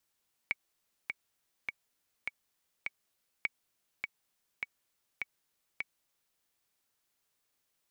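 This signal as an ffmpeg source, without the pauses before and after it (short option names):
-f lavfi -i "aevalsrc='pow(10,(-17-4.5*gte(mod(t,5*60/102),60/102))/20)*sin(2*PI*2250*mod(t,60/102))*exp(-6.91*mod(t,60/102)/0.03)':d=5.88:s=44100"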